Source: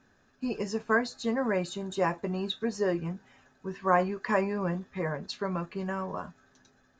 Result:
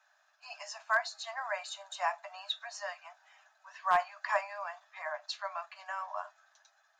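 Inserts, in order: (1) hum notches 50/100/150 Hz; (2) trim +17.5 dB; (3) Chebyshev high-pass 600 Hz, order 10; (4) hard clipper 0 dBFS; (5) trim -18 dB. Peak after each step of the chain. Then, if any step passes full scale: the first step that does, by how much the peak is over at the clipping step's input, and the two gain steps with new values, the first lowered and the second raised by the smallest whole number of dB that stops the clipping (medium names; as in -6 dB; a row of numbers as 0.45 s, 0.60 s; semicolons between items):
-11.0 dBFS, +6.5 dBFS, +4.0 dBFS, 0.0 dBFS, -18.0 dBFS; step 2, 4.0 dB; step 2 +13.5 dB, step 5 -14 dB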